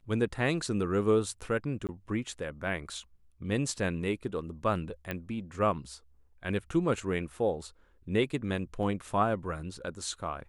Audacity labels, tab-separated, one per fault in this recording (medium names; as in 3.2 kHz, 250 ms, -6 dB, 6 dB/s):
1.870000	1.890000	dropout 18 ms
5.110000	5.110000	pop -20 dBFS
8.830000	8.830000	dropout 2 ms